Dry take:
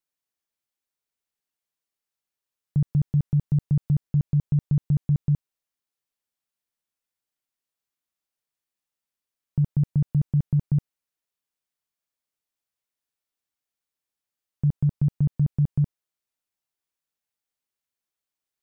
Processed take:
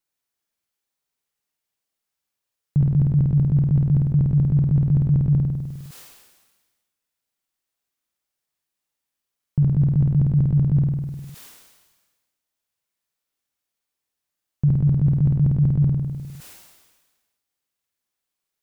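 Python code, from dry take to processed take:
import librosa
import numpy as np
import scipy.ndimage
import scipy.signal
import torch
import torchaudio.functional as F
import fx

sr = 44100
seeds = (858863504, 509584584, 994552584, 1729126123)

y = fx.room_flutter(x, sr, wall_m=8.7, rt60_s=0.6)
y = fx.sustainer(y, sr, db_per_s=42.0)
y = y * librosa.db_to_amplitude(3.5)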